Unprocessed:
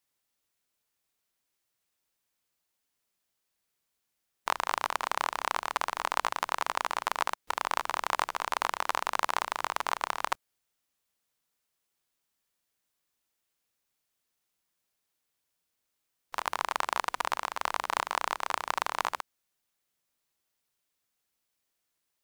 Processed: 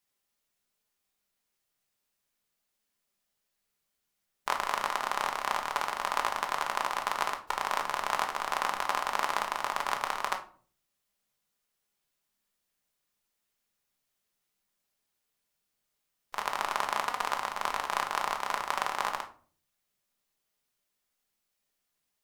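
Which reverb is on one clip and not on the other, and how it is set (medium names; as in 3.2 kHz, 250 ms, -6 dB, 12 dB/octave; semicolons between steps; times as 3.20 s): simulated room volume 340 m³, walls furnished, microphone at 1.3 m; trim -1.5 dB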